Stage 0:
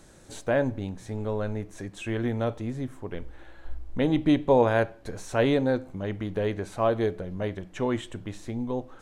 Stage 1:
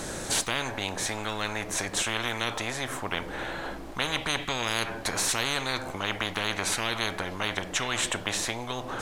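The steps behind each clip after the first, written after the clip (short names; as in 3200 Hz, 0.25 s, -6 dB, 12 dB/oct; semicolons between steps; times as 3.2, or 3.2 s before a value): spectral compressor 10:1; gain -2.5 dB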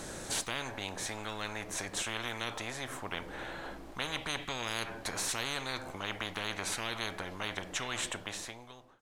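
ending faded out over 1.01 s; gain -7.5 dB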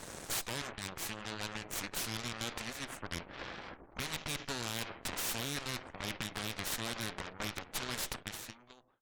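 spectral gate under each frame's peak -25 dB strong; added harmonics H 3 -22 dB, 7 -30 dB, 8 -8 dB, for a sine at -18.5 dBFS; ending taper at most 290 dB/s; gain -5.5 dB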